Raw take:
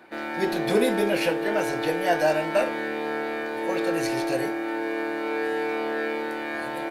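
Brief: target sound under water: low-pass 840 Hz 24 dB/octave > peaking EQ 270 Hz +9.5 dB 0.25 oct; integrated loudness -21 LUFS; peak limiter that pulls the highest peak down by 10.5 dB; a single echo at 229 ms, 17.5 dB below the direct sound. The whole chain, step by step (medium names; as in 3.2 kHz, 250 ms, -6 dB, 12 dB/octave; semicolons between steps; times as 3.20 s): peak limiter -20 dBFS; low-pass 840 Hz 24 dB/octave; peaking EQ 270 Hz +9.5 dB 0.25 oct; delay 229 ms -17.5 dB; trim +8.5 dB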